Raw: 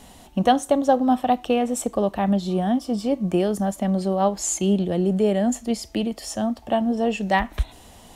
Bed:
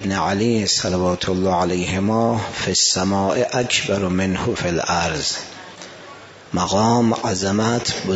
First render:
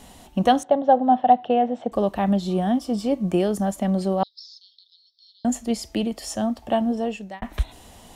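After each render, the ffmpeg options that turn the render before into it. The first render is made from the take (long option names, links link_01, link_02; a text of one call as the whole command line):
ffmpeg -i in.wav -filter_complex "[0:a]asettb=1/sr,asplit=3[link_01][link_02][link_03];[link_01]atrim=end=0.634[link_04];[link_02]atrim=start=0.63:end=1.92,asetpts=PTS-STARTPTS,afade=type=in:duration=0.004:curve=qsin,afade=type=out:start_time=1.286:duration=0.004:curve=qsin,highpass=frequency=120:width=0.5412,highpass=frequency=120:width=1.3066,equalizer=frequency=310:width_type=q:width=4:gain=-8,equalizer=frequency=730:width_type=q:width=4:gain=7,equalizer=frequency=1200:width_type=q:width=4:gain=-8,equalizer=frequency=2400:width_type=q:width=4:gain=-10,lowpass=frequency=3100:width=0.5412,lowpass=frequency=3100:width=1.3066[link_05];[link_03]atrim=start=1.916[link_06];[link_04][link_05]acrossfade=duration=0.004:curve1=hsin:curve2=qsin[link_07];[link_07][link_06]acrossfade=duration=0.004:curve1=qsin:curve2=hsin,asettb=1/sr,asplit=3[link_08][link_09][link_10];[link_08]atrim=end=4.234[link_11];[link_09]atrim=start=4.23:end=5.45,asetpts=PTS-STARTPTS,afade=type=in:duration=0.004:curve=qsin,afade=type=out:start_time=1.216:duration=0.004:curve=qsin,asuperpass=centerf=4400:order=12:qfactor=2.4[link_12];[link_10]atrim=start=5.446[link_13];[link_11][link_12]acrossfade=duration=0.004:curve1=hsin:curve2=qsin[link_14];[link_14][link_13]acrossfade=duration=0.004:curve1=qsin:curve2=hsin,asplit=2[link_15][link_16];[link_15]atrim=end=7.42,asetpts=PTS-STARTPTS,afade=type=out:start_time=6.85:duration=0.57[link_17];[link_16]atrim=start=7.42,asetpts=PTS-STARTPTS,afade=type=in:duration=0.004:curve=hsin[link_18];[link_17][link_18]concat=n=2:v=0:a=1" out.wav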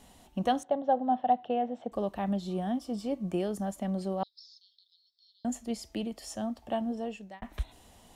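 ffmpeg -i in.wav -af "volume=-10dB" out.wav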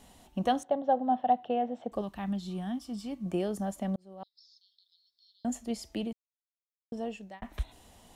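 ffmpeg -i in.wav -filter_complex "[0:a]asettb=1/sr,asplit=3[link_01][link_02][link_03];[link_01]atrim=end=2.014[link_04];[link_02]atrim=start=2.01:end=3.26,asetpts=PTS-STARTPTS,afade=type=in:duration=0.004:curve=qsin,afade=type=out:start_time=1.246:duration=0.004:curve=qsin,equalizer=frequency=520:width_type=o:width=1.2:gain=-12.5[link_05];[link_03]atrim=start=3.256[link_06];[link_04][link_05]acrossfade=duration=0.004:curve1=hsin:curve2=qsin[link_07];[link_07][link_06]acrossfade=duration=0.004:curve1=qsin:curve2=hsin,asplit=4[link_08][link_09][link_10][link_11];[link_08]atrim=end=3.96,asetpts=PTS-STARTPTS,afade=type=out:start_time=3.956:duration=0.004:curve=hsin[link_12];[link_09]atrim=start=3.96:end=6.13,asetpts=PTS-STARTPTS,afade=type=in:duration=1.56:curve=qsin,afade=type=out:start_time=2.166:duration=0.004:curve=hsin[link_13];[link_10]atrim=start=6.13:end=6.92,asetpts=PTS-STARTPTS,volume=0[link_14];[link_11]atrim=start=6.92,asetpts=PTS-STARTPTS,afade=type=in:duration=0.004:curve=hsin[link_15];[link_12][link_13][link_14][link_15]concat=n=4:v=0:a=1" out.wav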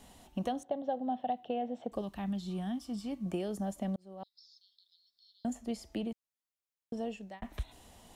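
ffmpeg -i in.wav -filter_complex "[0:a]acrossover=split=830|2000[link_01][link_02][link_03];[link_01]acompressor=threshold=-32dB:ratio=4[link_04];[link_02]acompressor=threshold=-54dB:ratio=4[link_05];[link_03]acompressor=threshold=-50dB:ratio=4[link_06];[link_04][link_05][link_06]amix=inputs=3:normalize=0" out.wav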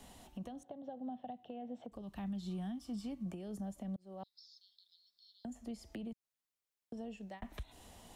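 ffmpeg -i in.wav -filter_complex "[0:a]acrossover=split=200[link_01][link_02];[link_02]acompressor=threshold=-44dB:ratio=6[link_03];[link_01][link_03]amix=inputs=2:normalize=0,alimiter=level_in=10.5dB:limit=-24dB:level=0:latency=1:release=220,volume=-10.5dB" out.wav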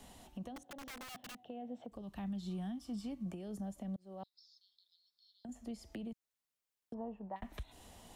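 ffmpeg -i in.wav -filter_complex "[0:a]asettb=1/sr,asplit=3[link_01][link_02][link_03];[link_01]atrim=end=0.564[link_04];[link_02]atrim=start=0.56:end=1.35,asetpts=PTS-STARTPTS,afade=type=in:duration=0.004:curve=qsin,afade=type=out:start_time=0.786:duration=0.004:curve=qsin,aeval=exprs='(mod(158*val(0)+1,2)-1)/158':channel_layout=same[link_05];[link_03]atrim=start=1.346[link_06];[link_04][link_05]acrossfade=duration=0.004:curve1=hsin:curve2=qsin[link_07];[link_07][link_06]acrossfade=duration=0.004:curve1=qsin:curve2=hsin,asettb=1/sr,asplit=3[link_08][link_09][link_10];[link_08]atrim=end=6.944[link_11];[link_09]atrim=start=6.94:end=7.36,asetpts=PTS-STARTPTS,afade=type=in:duration=0.004:curve=qsin,afade=type=out:start_time=0.416:duration=0.004:curve=qsin,lowpass=frequency=1000:width_type=q:width=5.1[link_12];[link_10]atrim=start=7.356[link_13];[link_11][link_12]acrossfade=duration=0.004:curve1=hsin:curve2=qsin[link_14];[link_14][link_13]acrossfade=duration=0.004:curve1=qsin:curve2=hsin,asplit=3[link_15][link_16][link_17];[link_15]atrim=end=4.262[link_18];[link_16]atrim=start=4.258:end=5.492,asetpts=PTS-STARTPTS,volume=-4.5dB[link_19];[link_17]atrim=start=5.488[link_20];[link_18][link_19]acrossfade=duration=0.004:curve1=hsin:curve2=hsin[link_21];[link_21][link_20]acrossfade=duration=0.004:curve1=hsin:curve2=hsin" out.wav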